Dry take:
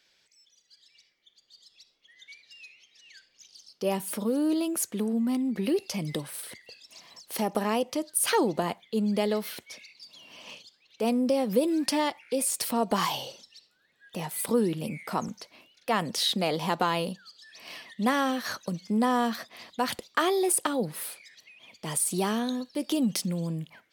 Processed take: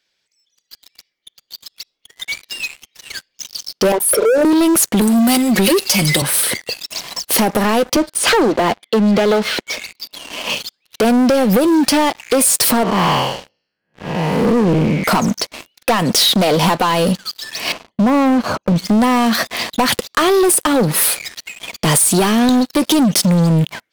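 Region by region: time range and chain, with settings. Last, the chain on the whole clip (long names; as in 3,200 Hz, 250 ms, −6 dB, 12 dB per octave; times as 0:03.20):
0:03.92–0:04.45: spectral envelope exaggerated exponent 3 + high-pass filter 390 Hz 24 dB per octave
0:05.01–0:06.22: spectral tilt +3 dB per octave + comb filter 5.4 ms, depth 88%
0:07.96–0:10.50: high-pass filter 210 Hz 24 dB per octave + high-frequency loss of the air 120 metres
0:12.83–0:15.04: spectrum smeared in time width 283 ms + Butterworth band-reject 3,700 Hz, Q 4.3 + high-frequency loss of the air 280 metres
0:17.72–0:18.76: downward expander −53 dBFS + moving average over 24 samples + downward compressor 2 to 1, threshold −30 dBFS
whole clip: downward compressor 10 to 1, threshold −30 dBFS; leveller curve on the samples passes 5; level +7 dB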